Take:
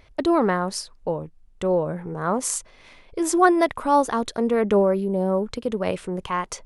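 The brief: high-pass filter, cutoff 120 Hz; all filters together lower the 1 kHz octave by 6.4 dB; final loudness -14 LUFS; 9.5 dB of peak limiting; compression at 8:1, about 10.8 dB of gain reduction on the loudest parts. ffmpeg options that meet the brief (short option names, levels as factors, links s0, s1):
-af "highpass=120,equalizer=f=1000:t=o:g=-8.5,acompressor=threshold=0.0447:ratio=8,volume=8.91,alimiter=limit=0.631:level=0:latency=1"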